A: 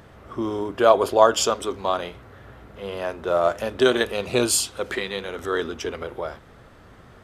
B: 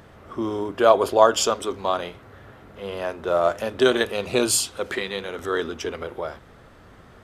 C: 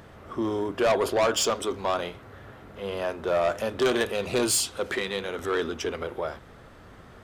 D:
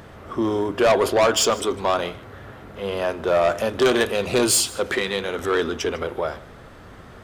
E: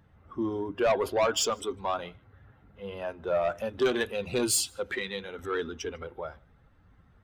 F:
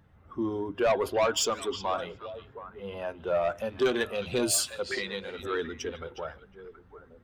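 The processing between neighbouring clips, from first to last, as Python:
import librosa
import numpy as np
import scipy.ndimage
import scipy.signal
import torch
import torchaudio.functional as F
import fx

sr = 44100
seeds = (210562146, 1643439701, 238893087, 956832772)

y1 = fx.hum_notches(x, sr, base_hz=60, count=2)
y2 = 10.0 ** (-18.0 / 20.0) * np.tanh(y1 / 10.0 ** (-18.0 / 20.0))
y3 = y2 + 10.0 ** (-21.0 / 20.0) * np.pad(y2, (int(152 * sr / 1000.0), 0))[:len(y2)]
y3 = F.gain(torch.from_numpy(y3), 5.5).numpy()
y4 = fx.bin_expand(y3, sr, power=1.5)
y4 = F.gain(torch.from_numpy(y4), -6.0).numpy()
y5 = fx.echo_stepped(y4, sr, ms=362, hz=3500.0, octaves=-1.4, feedback_pct=70, wet_db=-8)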